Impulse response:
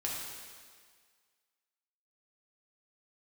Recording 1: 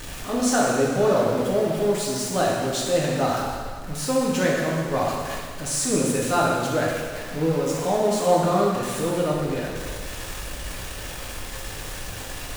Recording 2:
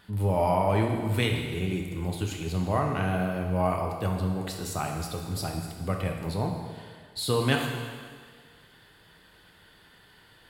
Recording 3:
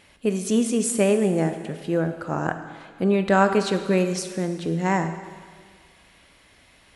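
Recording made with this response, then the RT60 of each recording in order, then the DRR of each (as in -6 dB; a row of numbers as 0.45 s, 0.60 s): 1; 1.8 s, 1.8 s, 1.8 s; -4.5 dB, 1.0 dB, 7.5 dB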